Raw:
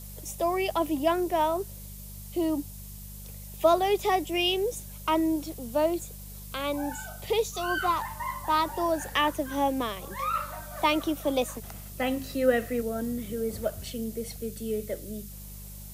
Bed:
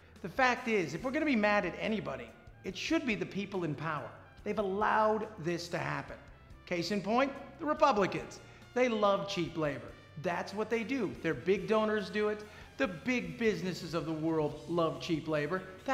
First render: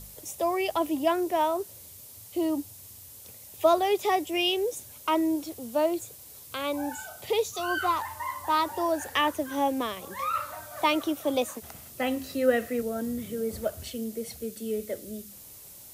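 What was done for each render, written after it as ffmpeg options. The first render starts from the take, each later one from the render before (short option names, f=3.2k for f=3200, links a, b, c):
-af "bandreject=f=50:t=h:w=4,bandreject=f=100:t=h:w=4,bandreject=f=150:t=h:w=4,bandreject=f=200:t=h:w=4"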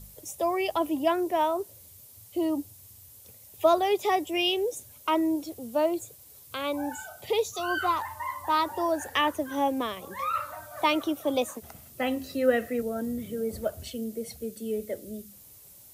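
-af "afftdn=nr=6:nf=-48"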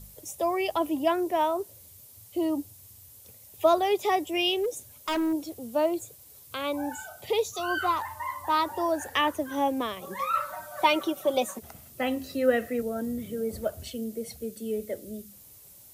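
-filter_complex "[0:a]asettb=1/sr,asplit=3[a][b][c];[a]atrim=end=4.574[d];[b]atrim=start=4.57:end=5.33,asetpts=PTS-STARTPTS,afade=t=in:d=0.004:c=qsin,afade=t=out:st=0.756:d=0.004:c=qsin,aeval=exprs='0.075*(abs(mod(val(0)/0.075+3,4)-2)-1)':c=same[e];[c]atrim=start=5.326[f];[d][e]acrossfade=d=0.004:c1=hsin:c2=qsin[g];[g][f]acrossfade=d=0.004:c1=qsin:c2=hsin,asettb=1/sr,asplit=3[h][i][j];[h]atrim=end=10.014[k];[i]atrim=start=10.01:end=11.59,asetpts=PTS-STARTPTS,afade=t=in:d=0.004:c=qsin,afade=t=out:st=1.576:d=0.004:c=qsin,aecho=1:1:5.3:0.68,atrim=end_sample=69678[l];[j]atrim=start=11.586[m];[k][l]acrossfade=d=0.004:c1=hsin:c2=qsin[n];[n][m]acrossfade=d=0.004:c1=qsin:c2=hsin"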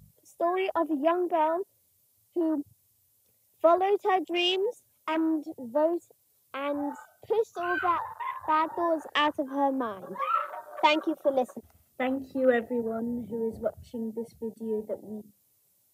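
-af "afwtdn=0.0158,highpass=100"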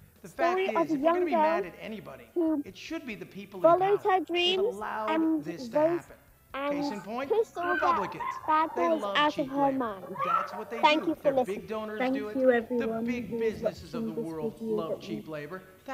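-filter_complex "[1:a]volume=-5.5dB[a];[0:a][a]amix=inputs=2:normalize=0"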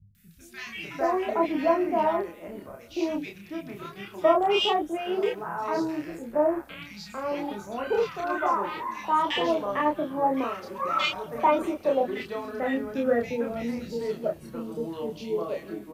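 -filter_complex "[0:a]asplit=2[a][b];[b]adelay=30,volume=-2dB[c];[a][c]amix=inputs=2:normalize=0,acrossover=split=180|1800[d][e][f];[f]adelay=150[g];[e]adelay=600[h];[d][h][g]amix=inputs=3:normalize=0"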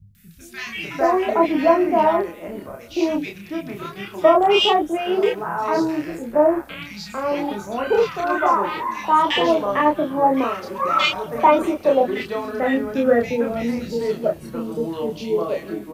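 -af "volume=7.5dB,alimiter=limit=-3dB:level=0:latency=1"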